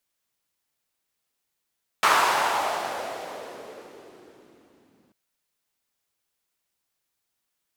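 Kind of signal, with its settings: swept filtered noise white, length 3.09 s bandpass, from 1.1 kHz, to 240 Hz, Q 2.4, exponential, gain ramp -40 dB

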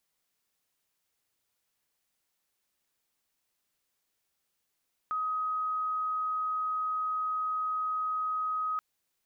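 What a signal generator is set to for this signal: tone sine 1.26 kHz -28.5 dBFS 3.68 s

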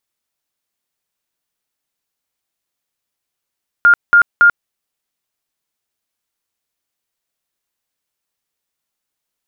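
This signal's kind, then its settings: tone bursts 1.41 kHz, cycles 124, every 0.28 s, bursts 3, -4.5 dBFS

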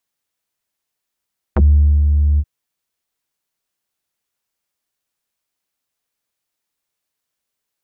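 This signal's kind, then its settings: synth note square D2 12 dB/octave, low-pass 100 Hz, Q 2.4, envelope 4.5 oct, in 0.05 s, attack 6.1 ms, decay 0.46 s, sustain -4.5 dB, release 0.05 s, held 0.83 s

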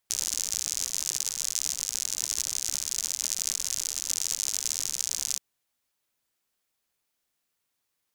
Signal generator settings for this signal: rain from filtered ticks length 5.28 s, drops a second 86, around 6.4 kHz, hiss -25 dB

